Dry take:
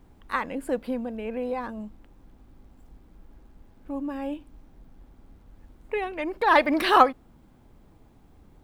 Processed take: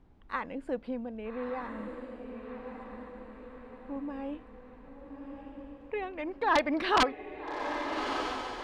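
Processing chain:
wrap-around overflow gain 8 dB
high-frequency loss of the air 120 metres
feedback delay with all-pass diffusion 1,249 ms, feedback 50%, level −6 dB
level −6 dB

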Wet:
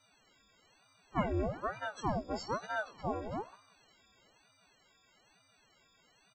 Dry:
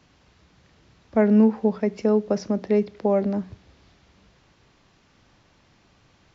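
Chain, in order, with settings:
every partial snapped to a pitch grid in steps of 6 semitones
hum removal 171.7 Hz, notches 31
chorus effect 2.2 Hz, delay 15 ms, depth 3 ms
echo with shifted repeats 96 ms, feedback 51%, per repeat −64 Hz, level −23 dB
ring modulator whose carrier an LFO sweeps 640 Hz, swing 80%, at 1.1 Hz
level −8.5 dB

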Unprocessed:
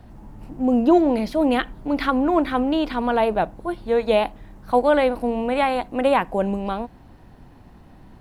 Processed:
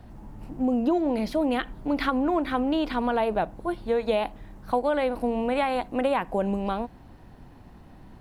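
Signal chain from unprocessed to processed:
downward compressor 5 to 1, threshold −19 dBFS, peak gain reduction 8 dB
level −1.5 dB

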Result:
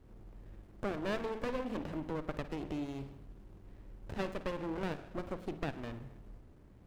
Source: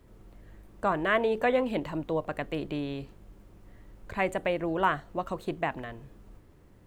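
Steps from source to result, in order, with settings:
downward compressor 2 to 1, threshold −36 dBFS, peak gain reduction 9.5 dB
convolution reverb RT60 1.0 s, pre-delay 51 ms, DRR 10 dB
windowed peak hold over 33 samples
level −1.5 dB

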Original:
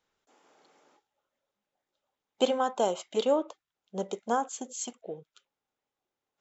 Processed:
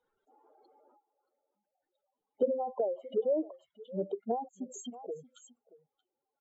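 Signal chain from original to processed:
expanding power law on the bin magnitudes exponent 3.2
single-tap delay 628 ms −21 dB
treble cut that deepens with the level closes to 530 Hz, closed at −27 dBFS

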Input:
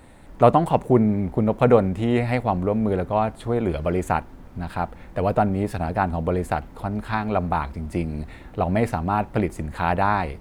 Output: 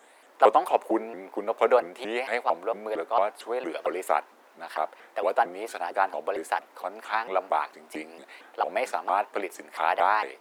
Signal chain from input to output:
Bessel high-pass filter 600 Hz, order 6
pitch modulation by a square or saw wave saw up 4.4 Hz, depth 250 cents

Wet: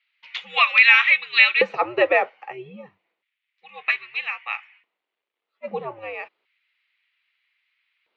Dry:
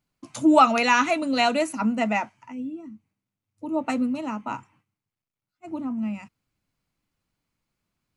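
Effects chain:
single-sideband voice off tune −120 Hz 320–3,600 Hz
auto-filter high-pass square 0.31 Hz 410–2,100 Hz
high-shelf EQ 2,400 Hz +11 dB
in parallel at +2.5 dB: downward compressor, threshold −25 dBFS, peak gain reduction 15 dB
on the sum: level −1 dB

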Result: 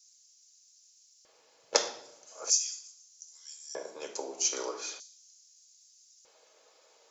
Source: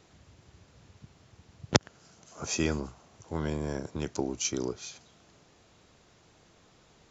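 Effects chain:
spectral tilt +3 dB per octave
0:03.35–0:03.89: frequency shifter +27 Hz
0:04.52–0:04.94: parametric band 1,400 Hz +11.5 dB 1.6 octaves
convolution reverb RT60 0.75 s, pre-delay 4 ms, DRR 2 dB
auto-filter high-pass square 0.4 Hz 530–5,900 Hz
level −11.5 dB

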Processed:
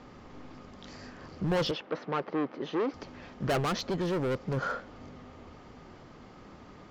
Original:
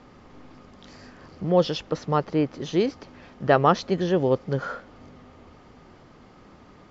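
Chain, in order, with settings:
gain into a clipping stage and back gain 25 dB
0:01.71–0:02.94: band-pass filter 270–2,500 Hz
0:03.59–0:04.57: downward compressor, threshold −28 dBFS, peak gain reduction 2.5 dB

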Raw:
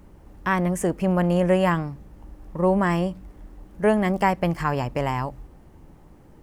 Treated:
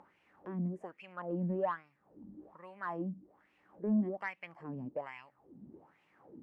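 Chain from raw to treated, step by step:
high-pass filter 120 Hz 12 dB per octave
low-shelf EQ 210 Hz +9 dB
upward compression, threshold −25 dBFS
LFO wah 1.2 Hz 210–2,600 Hz, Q 4.9
soft clipping −15.5 dBFS, distortion −20 dB
level −7 dB

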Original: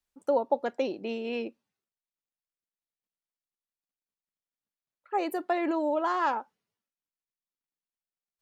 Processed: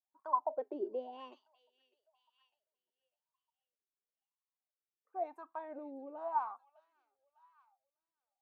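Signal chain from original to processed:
source passing by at 0:02.27, 35 m/s, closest 22 metres
parametric band 480 Hz −10 dB 0.49 octaves
delay with a high-pass on its return 602 ms, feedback 35%, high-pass 3,100 Hz, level −5 dB
in parallel at +2.5 dB: brickwall limiter −34.5 dBFS, peak gain reduction 8 dB
on the sum: LFO wah 0.96 Hz 370–1,100 Hz, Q 11
level +10 dB

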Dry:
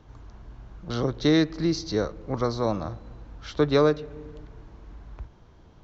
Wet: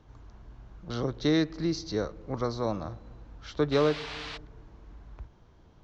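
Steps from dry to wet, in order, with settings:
0:03.71–0:04.36: noise in a band 600–4,300 Hz −36 dBFS
downsampling to 22,050 Hz
level −4.5 dB

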